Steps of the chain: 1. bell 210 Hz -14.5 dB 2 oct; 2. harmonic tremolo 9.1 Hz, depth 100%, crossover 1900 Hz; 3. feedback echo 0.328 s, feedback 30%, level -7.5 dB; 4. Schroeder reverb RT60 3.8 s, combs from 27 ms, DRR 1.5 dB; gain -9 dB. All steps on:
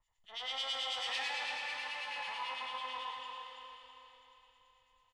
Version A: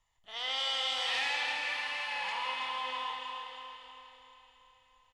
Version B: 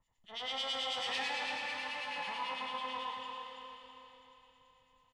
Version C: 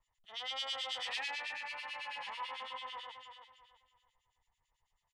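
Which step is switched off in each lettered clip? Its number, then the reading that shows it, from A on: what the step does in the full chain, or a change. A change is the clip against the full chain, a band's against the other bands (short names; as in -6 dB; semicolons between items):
2, loudness change +5.0 LU; 1, 250 Hz band +12.5 dB; 4, echo-to-direct 0.0 dB to -7.0 dB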